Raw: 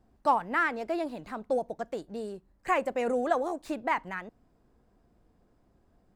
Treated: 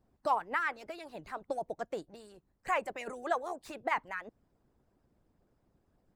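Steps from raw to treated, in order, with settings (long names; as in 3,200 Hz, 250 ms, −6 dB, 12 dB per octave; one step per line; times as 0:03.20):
harmonic and percussive parts rebalanced harmonic −17 dB
level −1 dB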